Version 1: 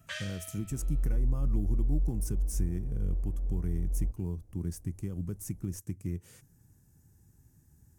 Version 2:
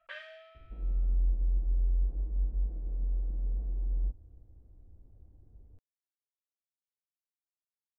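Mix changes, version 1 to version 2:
speech: muted; master: add air absorption 450 m

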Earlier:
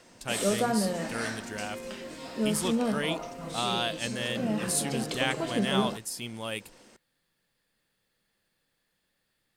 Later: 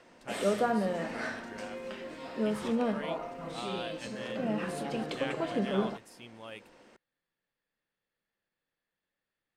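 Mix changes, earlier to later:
speech -9.0 dB; master: add tone controls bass -5 dB, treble -13 dB

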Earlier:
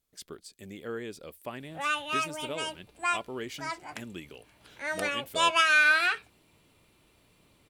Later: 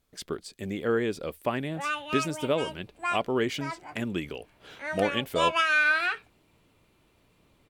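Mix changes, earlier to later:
speech +11.0 dB; master: add high shelf 4200 Hz -10 dB

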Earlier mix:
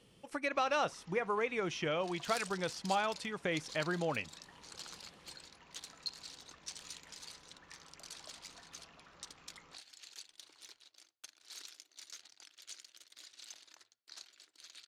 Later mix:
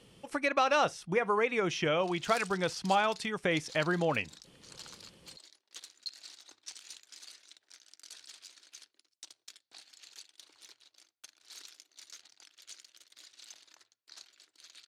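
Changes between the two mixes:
speech +5.5 dB; first sound: muted

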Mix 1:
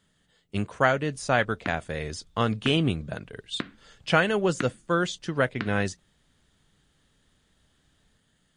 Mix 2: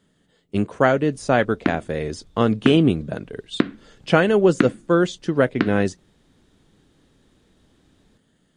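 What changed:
background +6.0 dB; master: add bell 320 Hz +10.5 dB 2.2 oct

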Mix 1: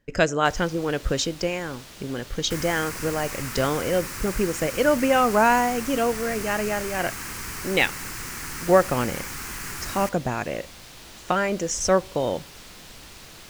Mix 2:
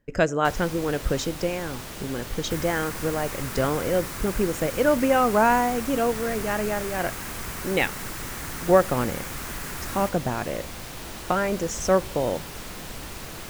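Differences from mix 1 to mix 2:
first sound +9.5 dB; master: add bell 4300 Hz -7 dB 2.1 oct

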